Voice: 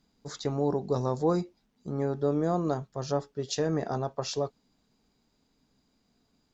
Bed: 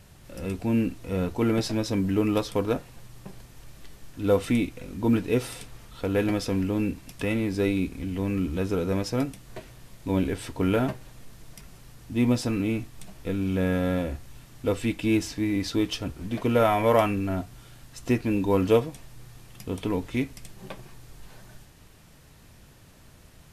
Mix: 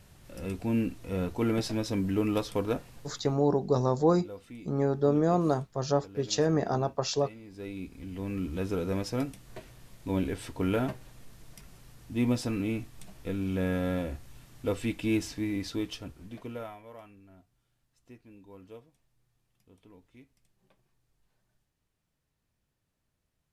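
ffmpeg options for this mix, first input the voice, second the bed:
-filter_complex "[0:a]adelay=2800,volume=1.33[s0];[1:a]volume=4.73,afade=t=out:st=2.96:d=0.46:silence=0.125893,afade=t=in:st=7.45:d=1.21:silence=0.133352,afade=t=out:st=15.29:d=1.53:silence=0.0668344[s1];[s0][s1]amix=inputs=2:normalize=0"

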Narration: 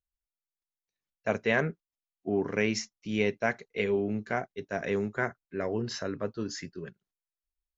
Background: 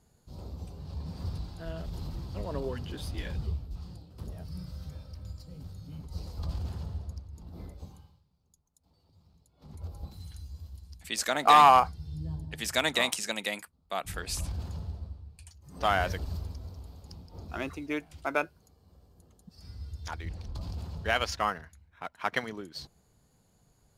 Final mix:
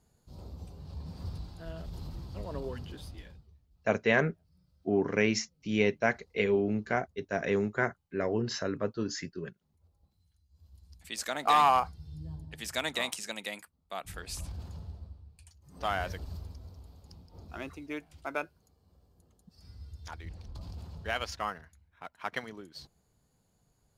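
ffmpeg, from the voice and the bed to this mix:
-filter_complex "[0:a]adelay=2600,volume=1.12[s0];[1:a]volume=7.94,afade=t=out:st=2.8:d=0.64:silence=0.0668344,afade=t=in:st=10.49:d=0.49:silence=0.0841395[s1];[s0][s1]amix=inputs=2:normalize=0"

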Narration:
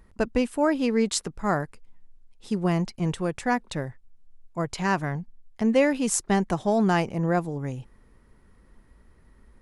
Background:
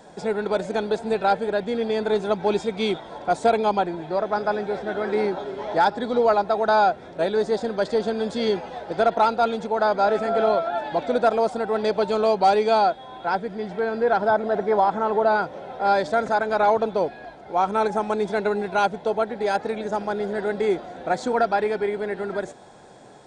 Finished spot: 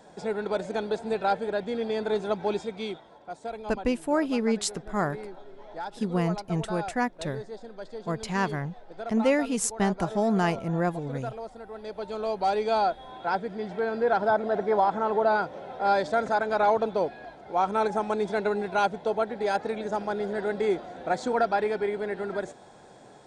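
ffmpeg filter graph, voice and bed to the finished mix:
-filter_complex "[0:a]adelay=3500,volume=0.75[s0];[1:a]volume=2.66,afade=t=out:st=2.38:d=0.81:silence=0.251189,afade=t=in:st=11.81:d=1.33:silence=0.211349[s1];[s0][s1]amix=inputs=2:normalize=0"

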